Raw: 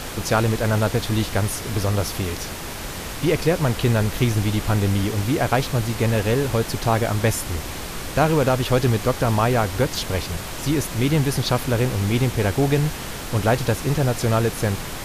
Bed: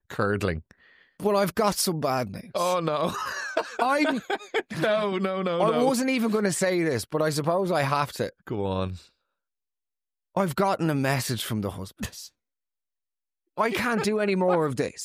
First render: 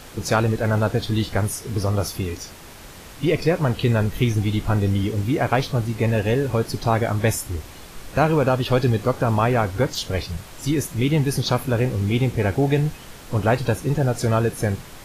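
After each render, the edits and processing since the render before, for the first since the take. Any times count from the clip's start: noise print and reduce 10 dB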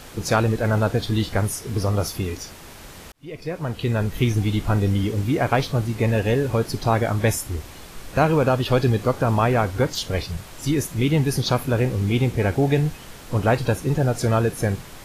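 3.12–4.28 s: fade in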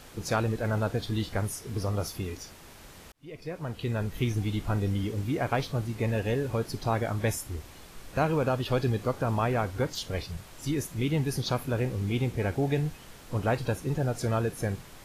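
trim -8 dB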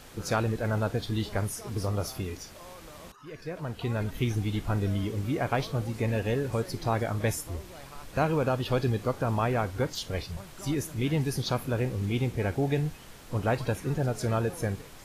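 add bed -24 dB

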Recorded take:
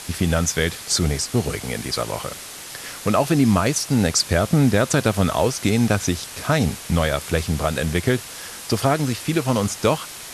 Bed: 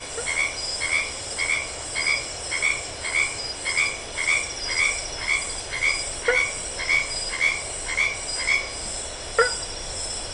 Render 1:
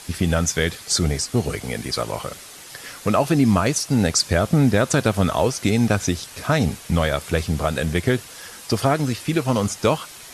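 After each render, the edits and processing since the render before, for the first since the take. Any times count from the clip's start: noise reduction 6 dB, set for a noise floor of -37 dBFS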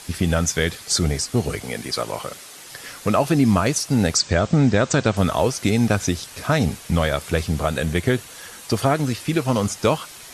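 1.63–2.64 s: high-pass 170 Hz 6 dB/octave; 4.17–5.17 s: steep low-pass 8.2 kHz 96 dB/octave; 7.59–9.07 s: band-stop 5.1 kHz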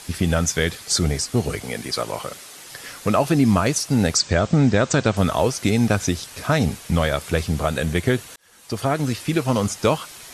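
8.36–9.08 s: fade in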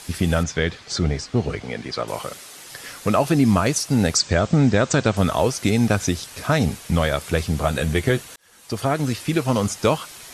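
0.43–2.08 s: distance through air 130 m; 7.62–8.21 s: doubling 14 ms -8 dB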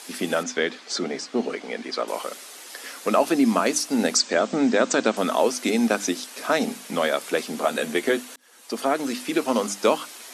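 elliptic high-pass 230 Hz, stop band 80 dB; hum notches 50/100/150/200/250/300 Hz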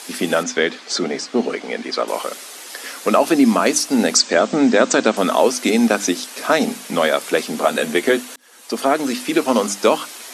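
trim +6 dB; peak limiter -2 dBFS, peak gain reduction 3 dB

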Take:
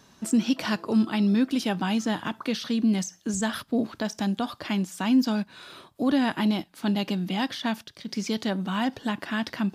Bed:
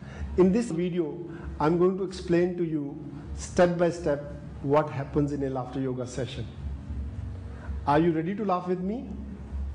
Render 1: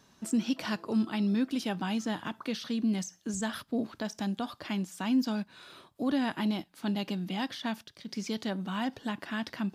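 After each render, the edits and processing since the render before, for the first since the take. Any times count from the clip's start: trim -6 dB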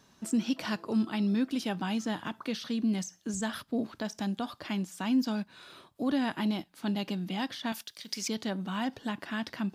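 7.72–8.28 s: tilt EQ +3.5 dB/octave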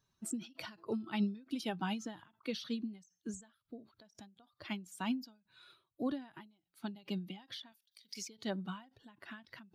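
expander on every frequency bin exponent 1.5; endings held to a fixed fall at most 150 dB/s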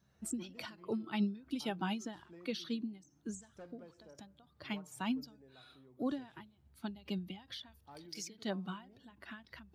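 add bed -32 dB

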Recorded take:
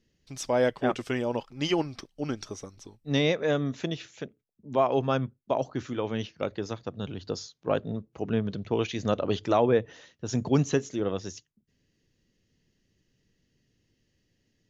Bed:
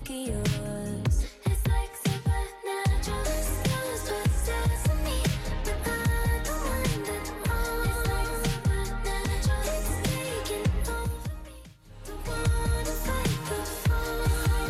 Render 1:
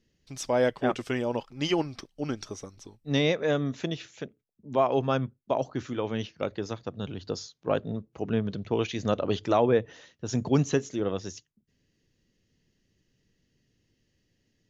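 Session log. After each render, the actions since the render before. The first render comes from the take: no audible change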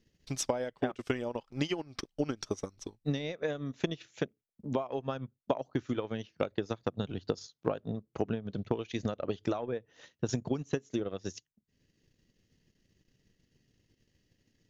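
compression 12:1, threshold -32 dBFS, peak gain reduction 15.5 dB; transient shaper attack +7 dB, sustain -10 dB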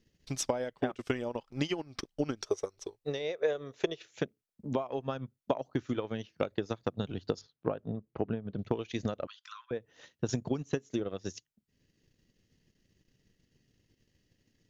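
2.42–4.13 s: resonant low shelf 320 Hz -7.5 dB, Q 3; 7.41–8.59 s: distance through air 350 m; 9.27–9.71 s: rippled Chebyshev high-pass 1 kHz, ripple 6 dB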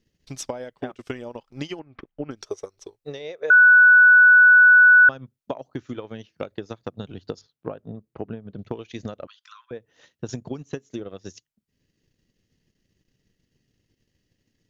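1.79–2.31 s: low-pass 2.5 kHz 24 dB/octave; 3.50–5.09 s: bleep 1.48 kHz -8.5 dBFS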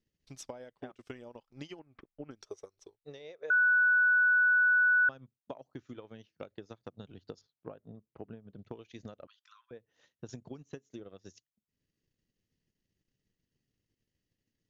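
trim -13 dB

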